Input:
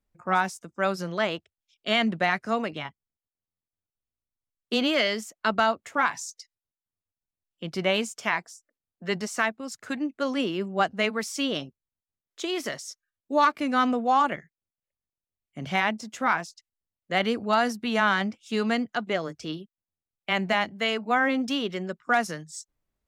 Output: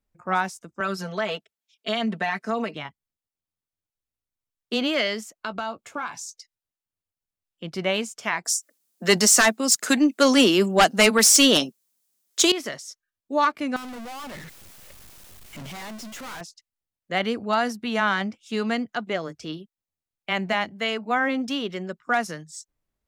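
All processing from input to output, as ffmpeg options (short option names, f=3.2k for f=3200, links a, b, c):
-filter_complex "[0:a]asettb=1/sr,asplit=3[a][b][c];[a]atrim=end=0.804[d];[b]atrim=start=0.8:end=2.75,asetpts=PTS-STARTPTS,afade=t=in:d=0.004:c=qsin,afade=t=out:st=1.946:d=0.004:c=qsin,highpass=190,aecho=1:1:4.5:0.95,atrim=end_sample=85995,acompressor=threshold=-21dB:ratio=5:attack=3.2:release=140:knee=1:detection=peak[e];[c]atrim=start=2.746[f];[d][e]acrossfade=d=0.004:c1=hsin:c2=qsin[g];[g][f]acrossfade=d=0.004:c1=qsin:c2=hsin,asettb=1/sr,asplit=3[h][i][j];[h]atrim=end=5.374[k];[i]atrim=start=5.37:end=6.39,asetpts=PTS-STARTPTS,afade=t=in:d=0.004:c=qsin,afade=t=out:st=1.016:d=0.004:c=qsin,acompressor=threshold=-27dB:ratio=3:attack=3.2:release=140:knee=1:detection=peak,bandreject=f=1.9k:w=5.3,asplit=2[l][m];[m]adelay=17,volume=-13dB[n];[l][n]amix=inputs=2:normalize=0,atrim=end_sample=44982[o];[j]atrim=start=6.386[p];[k][o]acrossfade=d=0.004:c1=hsin:c2=qsin[q];[q][p]acrossfade=d=0.004:c1=qsin:c2=hsin,asettb=1/sr,asplit=3[r][s][t];[r]atrim=end=8.454[u];[s]atrim=start=8.45:end=12.52,asetpts=PTS-STARTPTS,afade=t=in:d=0.004:c=qsin,afade=t=out:st=4.066:d=0.004:c=qsin,highpass=f=190:w=0.5412,highpass=f=190:w=1.3066,bass=f=250:g=1,treble=f=4k:g=14,aeval=exprs='0.335*sin(PI/2*2.24*val(0)/0.335)':c=same[v];[t]atrim=start=12.516[w];[u][v]acrossfade=d=0.004:c1=hsin:c2=qsin[x];[x][w]acrossfade=d=0.004:c1=qsin:c2=hsin,asettb=1/sr,asplit=3[y][z][aa];[y]atrim=end=13.764[ab];[z]atrim=start=13.76:end=16.41,asetpts=PTS-STARTPTS,afade=t=in:d=0.004:c=qsin,afade=t=out:st=2.646:d=0.004:c=qsin,aeval=exprs='val(0)+0.5*0.0211*sgn(val(0))':c=same,aeval=exprs='(tanh(63.1*val(0)+0.4)-tanh(0.4))/63.1':c=same[ac];[aa]atrim=start=16.406[ad];[ab][ac]acrossfade=d=0.004:c1=hsin:c2=qsin[ae];[ae][ad]acrossfade=d=0.004:c1=qsin:c2=hsin"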